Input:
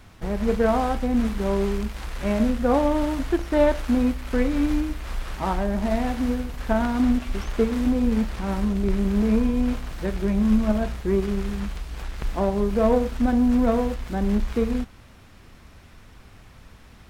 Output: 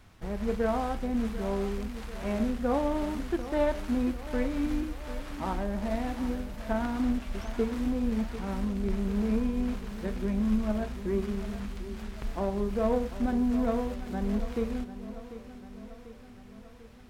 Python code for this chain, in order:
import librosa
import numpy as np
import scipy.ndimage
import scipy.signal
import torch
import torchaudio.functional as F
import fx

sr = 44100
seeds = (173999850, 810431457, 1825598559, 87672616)

y = fx.echo_feedback(x, sr, ms=743, feedback_pct=59, wet_db=-13.5)
y = F.gain(torch.from_numpy(y), -7.5).numpy()